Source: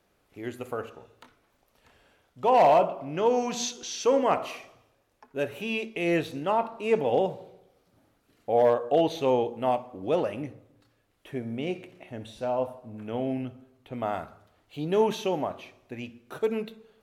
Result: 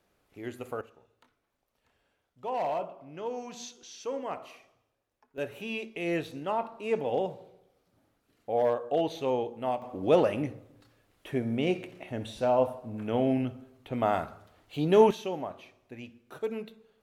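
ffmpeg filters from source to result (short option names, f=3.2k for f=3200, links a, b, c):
-af "asetnsamples=n=441:p=0,asendcmd='0.81 volume volume -12dB;5.38 volume volume -5dB;9.82 volume volume 3.5dB;15.11 volume volume -6dB',volume=-3dB"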